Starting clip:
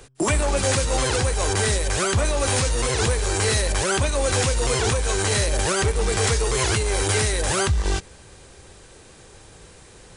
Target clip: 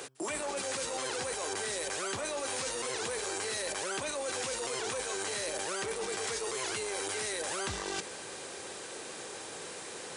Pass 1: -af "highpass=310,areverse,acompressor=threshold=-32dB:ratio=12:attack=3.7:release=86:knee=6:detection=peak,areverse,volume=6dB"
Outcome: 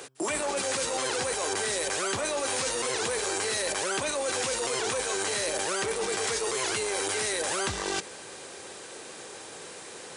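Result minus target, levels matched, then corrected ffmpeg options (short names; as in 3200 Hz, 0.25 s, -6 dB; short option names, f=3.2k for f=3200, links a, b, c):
compressor: peak gain reduction -6 dB
-af "highpass=310,areverse,acompressor=threshold=-38.5dB:ratio=12:attack=3.7:release=86:knee=6:detection=peak,areverse,volume=6dB"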